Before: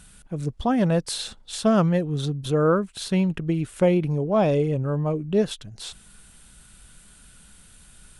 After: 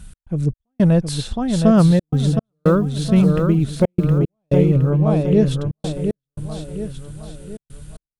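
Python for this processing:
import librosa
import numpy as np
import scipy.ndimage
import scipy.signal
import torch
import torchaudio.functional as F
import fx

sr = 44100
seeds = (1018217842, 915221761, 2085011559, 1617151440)

y = fx.block_float(x, sr, bits=7, at=(1.77, 4.2))
y = fx.low_shelf(y, sr, hz=82.0, db=7.0)
y = fx.echo_feedback(y, sr, ms=716, feedback_pct=44, wet_db=-6.0)
y = fx.step_gate(y, sr, bpm=113, pattern='x.xx..xxxxxxxx', floor_db=-60.0, edge_ms=4.5)
y = fx.low_shelf(y, sr, hz=340.0, db=9.0)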